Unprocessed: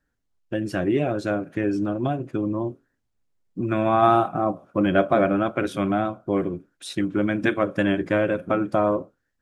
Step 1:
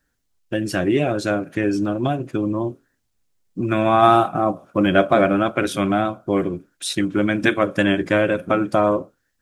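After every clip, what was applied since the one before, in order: high shelf 2700 Hz +9 dB; gain +3 dB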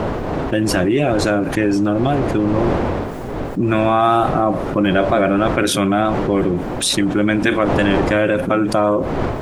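wind noise 560 Hz -31 dBFS; fast leveller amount 70%; gain -2.5 dB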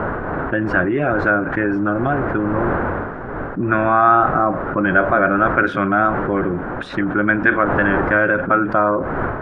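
synth low-pass 1500 Hz, resonance Q 4.2; gain -3.5 dB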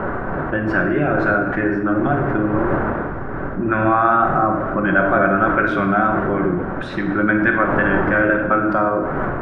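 shoebox room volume 750 m³, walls mixed, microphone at 1.1 m; gain -2.5 dB

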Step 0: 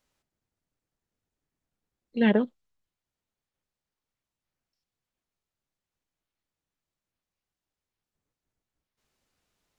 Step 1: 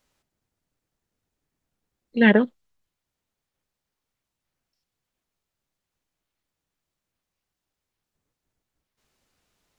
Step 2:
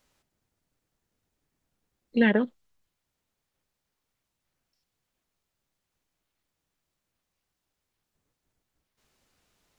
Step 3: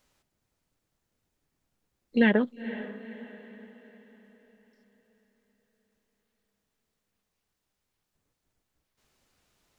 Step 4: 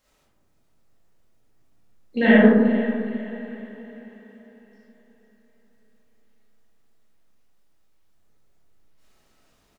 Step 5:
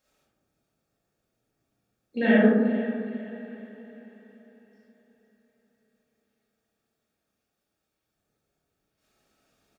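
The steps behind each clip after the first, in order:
dynamic EQ 1800 Hz, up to +7 dB, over -44 dBFS, Q 1.8; gain +5 dB
compressor 6:1, threshold -19 dBFS, peak gain reduction 9 dB; gain +1.5 dB
diffused feedback echo 0.481 s, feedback 46%, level -14 dB
doubler 41 ms -12.5 dB; digital reverb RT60 1.6 s, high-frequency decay 0.25×, pre-delay 0 ms, DRR -8.5 dB; gain -1.5 dB
notch comb 1000 Hz; gain -4.5 dB

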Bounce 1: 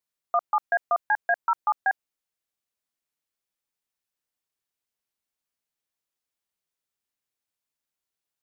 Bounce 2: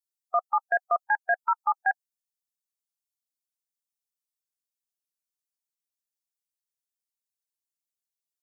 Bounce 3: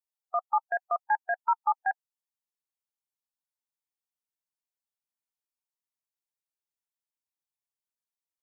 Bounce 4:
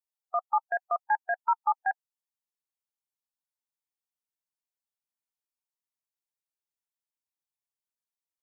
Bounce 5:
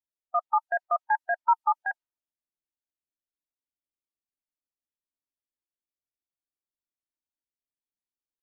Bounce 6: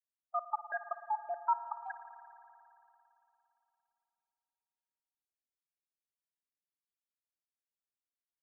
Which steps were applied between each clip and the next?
per-bin expansion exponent 1.5
bell 910 Hz +9.5 dB 0.51 oct; gain -7 dB
nothing audible
low-pass opened by the level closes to 440 Hz, open at -24 dBFS; comb 3.2 ms, depth 65%
random spectral dropouts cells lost 37%; spring tank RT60 3.1 s, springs 55 ms, chirp 75 ms, DRR 10.5 dB; gain -8.5 dB

